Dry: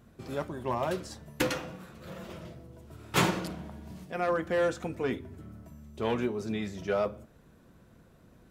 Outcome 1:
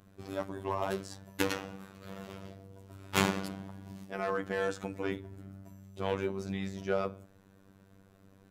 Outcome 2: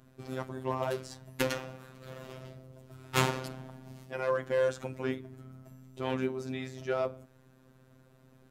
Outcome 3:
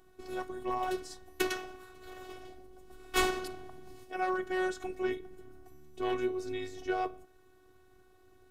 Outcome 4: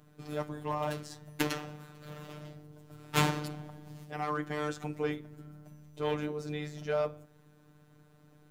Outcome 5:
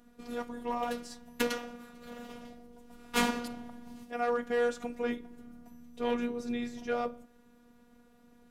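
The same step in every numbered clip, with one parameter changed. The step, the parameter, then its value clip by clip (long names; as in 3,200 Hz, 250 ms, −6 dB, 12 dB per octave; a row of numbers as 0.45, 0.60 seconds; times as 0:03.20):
phases set to zero, frequency: 97, 130, 370, 150, 240 Hertz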